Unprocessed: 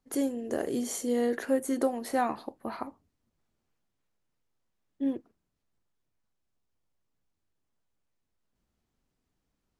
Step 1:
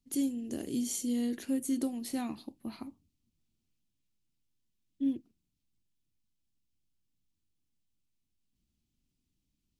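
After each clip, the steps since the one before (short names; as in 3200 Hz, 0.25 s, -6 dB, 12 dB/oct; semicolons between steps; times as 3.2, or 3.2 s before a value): band shelf 890 Hz -15.5 dB 2.5 oct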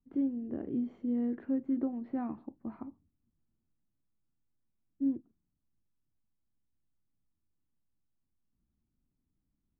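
LPF 1500 Hz 24 dB/oct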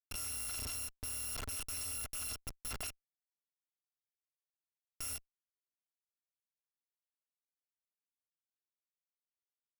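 FFT order left unsorted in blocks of 256 samples; Schmitt trigger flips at -47 dBFS; ending taper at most 460 dB/s; gain -1.5 dB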